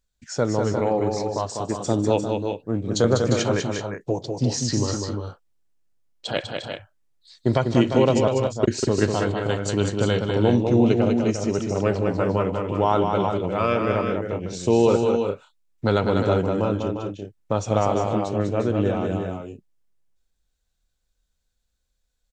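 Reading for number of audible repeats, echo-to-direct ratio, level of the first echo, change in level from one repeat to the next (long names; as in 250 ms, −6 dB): 4, −2.5 dB, −20.0 dB, repeats not evenly spaced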